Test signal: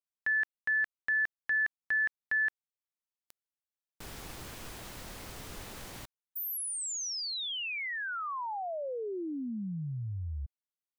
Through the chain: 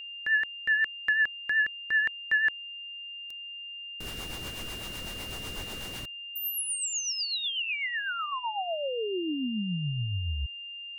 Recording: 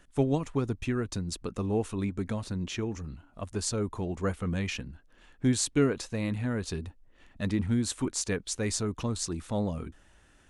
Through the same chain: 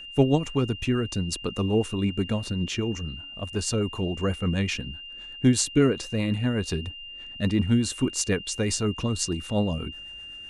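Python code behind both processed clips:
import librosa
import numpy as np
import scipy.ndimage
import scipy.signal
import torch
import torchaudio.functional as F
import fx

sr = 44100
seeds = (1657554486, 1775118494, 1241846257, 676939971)

y = fx.rotary(x, sr, hz=8.0)
y = y + 10.0 ** (-45.0 / 20.0) * np.sin(2.0 * np.pi * 2800.0 * np.arange(len(y)) / sr)
y = y * librosa.db_to_amplitude(6.5)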